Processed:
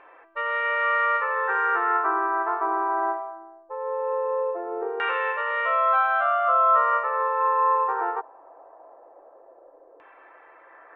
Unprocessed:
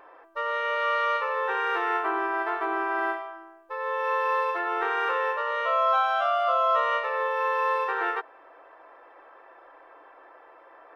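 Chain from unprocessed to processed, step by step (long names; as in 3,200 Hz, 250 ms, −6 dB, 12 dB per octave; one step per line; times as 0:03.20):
downsampling to 11,025 Hz
auto-filter low-pass saw down 0.2 Hz 500–2,600 Hz
level −1.5 dB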